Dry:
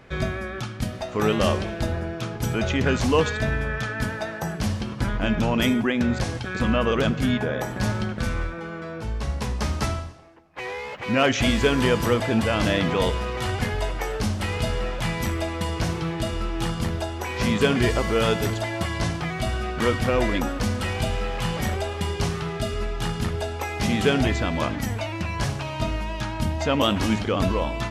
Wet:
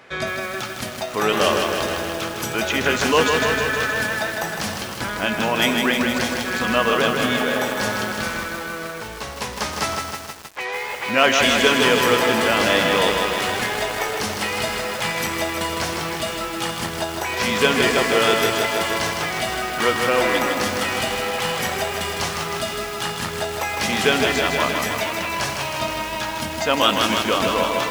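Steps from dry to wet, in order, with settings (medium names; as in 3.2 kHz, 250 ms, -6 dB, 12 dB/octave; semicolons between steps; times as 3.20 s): high-pass 180 Hz 6 dB/octave; bass shelf 340 Hz -12 dB; bit-crushed delay 157 ms, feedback 80%, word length 7-bit, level -4 dB; trim +6.5 dB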